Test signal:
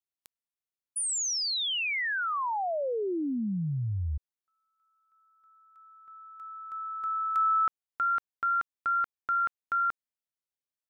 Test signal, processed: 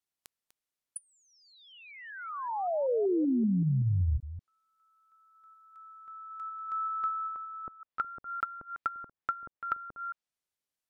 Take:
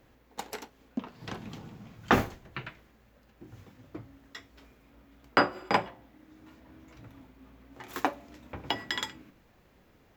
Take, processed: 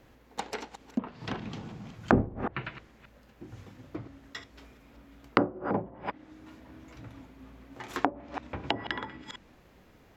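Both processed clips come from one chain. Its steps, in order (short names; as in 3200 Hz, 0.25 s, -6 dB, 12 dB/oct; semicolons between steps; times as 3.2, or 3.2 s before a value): reverse delay 0.191 s, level -13 dB; treble ducked by the level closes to 430 Hz, closed at -26.5 dBFS; gain +3.5 dB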